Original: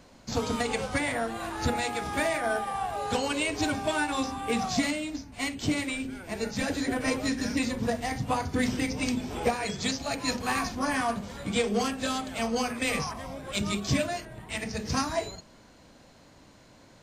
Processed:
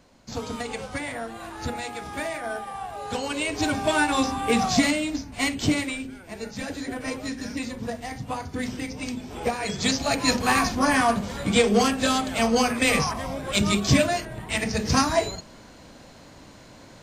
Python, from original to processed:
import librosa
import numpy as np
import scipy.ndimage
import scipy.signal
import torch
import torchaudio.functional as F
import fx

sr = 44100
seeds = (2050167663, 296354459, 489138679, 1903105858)

y = fx.gain(x, sr, db=fx.line((2.96, -3.0), (4.01, 6.5), (5.62, 6.5), (6.21, -3.0), (9.26, -3.0), (9.98, 7.5)))